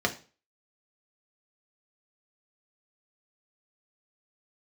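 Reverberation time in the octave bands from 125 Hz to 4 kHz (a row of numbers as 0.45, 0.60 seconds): 0.40, 0.40, 0.40, 0.35, 0.35, 0.35 seconds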